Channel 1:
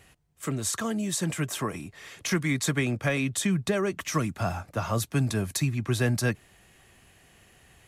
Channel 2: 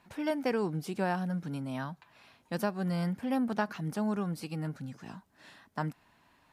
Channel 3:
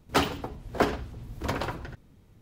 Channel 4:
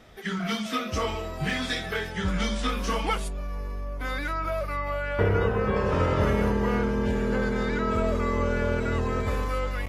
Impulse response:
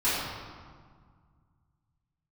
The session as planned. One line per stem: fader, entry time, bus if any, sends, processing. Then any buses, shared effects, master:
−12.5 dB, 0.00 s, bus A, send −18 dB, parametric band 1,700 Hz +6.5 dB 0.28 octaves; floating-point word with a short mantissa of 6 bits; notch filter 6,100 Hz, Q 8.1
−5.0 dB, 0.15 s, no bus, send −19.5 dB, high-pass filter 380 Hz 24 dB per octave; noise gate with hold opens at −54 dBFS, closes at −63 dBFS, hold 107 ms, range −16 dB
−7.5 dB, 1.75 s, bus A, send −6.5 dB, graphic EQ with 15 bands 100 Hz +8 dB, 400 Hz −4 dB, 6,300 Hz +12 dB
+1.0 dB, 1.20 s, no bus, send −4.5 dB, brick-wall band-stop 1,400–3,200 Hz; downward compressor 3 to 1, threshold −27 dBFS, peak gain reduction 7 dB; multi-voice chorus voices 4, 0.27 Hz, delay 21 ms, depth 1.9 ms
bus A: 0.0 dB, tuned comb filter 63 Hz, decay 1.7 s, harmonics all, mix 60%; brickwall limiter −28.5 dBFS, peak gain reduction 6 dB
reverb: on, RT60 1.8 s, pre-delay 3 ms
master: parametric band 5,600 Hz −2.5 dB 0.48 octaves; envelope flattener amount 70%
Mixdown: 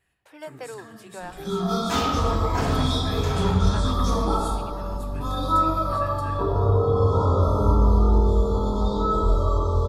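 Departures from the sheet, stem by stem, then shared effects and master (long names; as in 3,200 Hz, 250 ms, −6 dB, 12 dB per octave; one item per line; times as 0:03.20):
stem 2: send off
master: missing envelope flattener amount 70%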